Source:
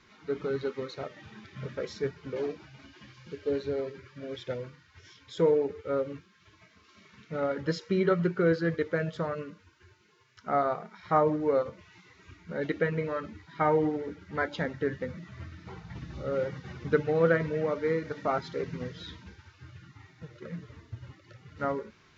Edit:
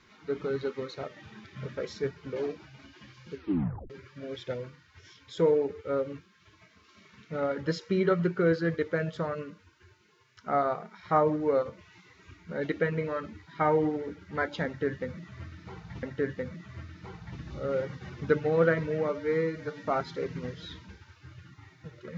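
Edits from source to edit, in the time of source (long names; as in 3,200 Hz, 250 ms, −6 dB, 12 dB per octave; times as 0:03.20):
0:03.34: tape stop 0.56 s
0:14.66–0:16.03: repeat, 2 plays
0:17.72–0:18.23: time-stretch 1.5×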